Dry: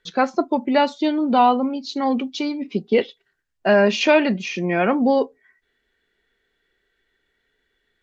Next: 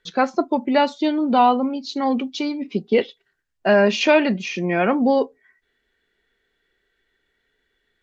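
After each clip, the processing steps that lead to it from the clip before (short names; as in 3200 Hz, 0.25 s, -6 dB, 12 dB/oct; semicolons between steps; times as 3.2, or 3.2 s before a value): nothing audible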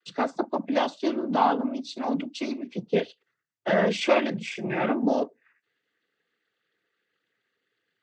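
noise vocoder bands 16; gain -6.5 dB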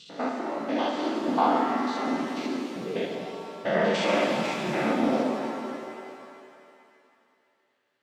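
stepped spectrum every 0.1 s; shimmer reverb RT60 2.6 s, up +7 st, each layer -8 dB, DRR 0.5 dB; gain -1 dB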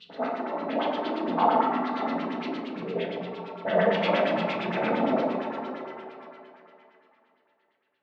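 LFO low-pass sine 8.7 Hz 630–3800 Hz; shoebox room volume 490 m³, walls furnished, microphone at 1.5 m; gain -4.5 dB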